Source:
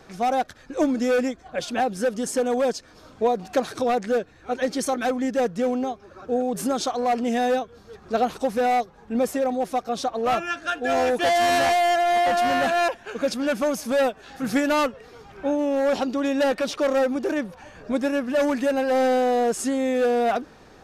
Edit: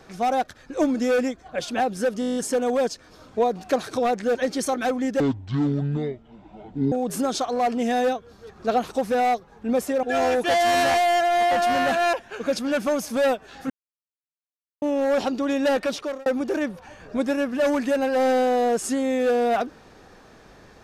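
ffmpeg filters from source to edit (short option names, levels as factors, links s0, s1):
-filter_complex "[0:a]asplit=16[s0][s1][s2][s3][s4][s5][s6][s7][s8][s9][s10][s11][s12][s13][s14][s15];[s0]atrim=end=2.222[s16];[s1]atrim=start=2.198:end=2.222[s17];[s2]atrim=start=2.198:end=2.222[s18];[s3]atrim=start=2.198:end=2.222[s19];[s4]atrim=start=2.198:end=2.222[s20];[s5]atrim=start=2.198:end=2.222[s21];[s6]atrim=start=2.198:end=2.222[s22];[s7]atrim=start=2.198:end=2.222[s23];[s8]atrim=start=2.198:end=4.192[s24];[s9]atrim=start=4.548:end=5.404[s25];[s10]atrim=start=5.4:end=6.38,asetpts=PTS-STARTPTS,asetrate=25137,aresample=44100,atrim=end_sample=75821,asetpts=PTS-STARTPTS[s26];[s11]atrim=start=6.376:end=9.492[s27];[s12]atrim=start=10.778:end=14.45,asetpts=PTS-STARTPTS,afade=t=out:st=3.668:d=0.004:c=hsin[s28];[s13]atrim=start=14.45:end=15.57,asetpts=PTS-STARTPTS,volume=0[s29];[s14]atrim=start=15.57:end=17.01,asetpts=PTS-STARTPTS,afade=t=in:d=0.004:c=hsin,afade=t=out:st=1.07:d=0.37[s30];[s15]atrim=start=17.01,asetpts=PTS-STARTPTS,afade=t=in:d=0.004:c=hsin[s31];[s16][s17]acrossfade=d=0.004:c1=hsin:c2=hsin[s32];[s32][s18]acrossfade=d=0.004:c1=hsin:c2=hsin[s33];[s33][s19]acrossfade=d=0.004:c1=hsin:c2=hsin[s34];[s34][s20]acrossfade=d=0.004:c1=hsin:c2=hsin[s35];[s35][s21]acrossfade=d=0.004:c1=hsin:c2=hsin[s36];[s36][s22]acrossfade=d=0.004:c1=hsin:c2=hsin[s37];[s37][s23]acrossfade=d=0.004:c1=hsin:c2=hsin[s38];[s38][s24]acrossfade=d=0.004:c1=hsin:c2=hsin[s39];[s39][s25]acrossfade=d=0.004:c1=hsin:c2=hsin[s40];[s40][s26]acrossfade=d=0.004:c1=hsin:c2=hsin[s41];[s41][s27]acrossfade=d=0.004:c1=hsin:c2=hsin[s42];[s28][s29][s30][s31]concat=n=4:v=0:a=1[s43];[s42][s43]acrossfade=d=0.004:c1=hsin:c2=hsin"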